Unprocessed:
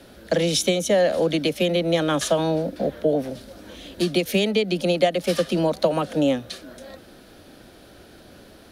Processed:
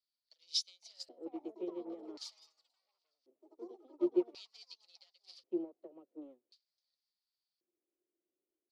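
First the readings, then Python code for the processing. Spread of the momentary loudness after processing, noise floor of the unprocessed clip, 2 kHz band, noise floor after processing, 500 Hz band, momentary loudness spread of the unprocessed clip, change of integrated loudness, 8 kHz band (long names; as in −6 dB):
21 LU, −48 dBFS, below −35 dB, below −85 dBFS, −22.0 dB, 17 LU, −18.0 dB, below −20 dB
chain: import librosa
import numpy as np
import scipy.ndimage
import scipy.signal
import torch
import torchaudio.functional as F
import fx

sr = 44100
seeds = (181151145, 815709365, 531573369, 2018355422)

y = fx.echo_pitch(x, sr, ms=589, semitones=5, count=3, db_per_echo=-3.0)
y = 10.0 ** (-17.0 / 20.0) * np.tanh(y / 10.0 ** (-17.0 / 20.0))
y = fx.weighting(y, sr, curve='A')
y = fx.filter_lfo_bandpass(y, sr, shape='square', hz=0.46, low_hz=350.0, high_hz=4700.0, q=7.7)
y = fx.peak_eq(y, sr, hz=1600.0, db=-15.0, octaves=0.27)
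y = fx.upward_expand(y, sr, threshold_db=-52.0, expansion=2.5)
y = y * librosa.db_to_amplitude(5.0)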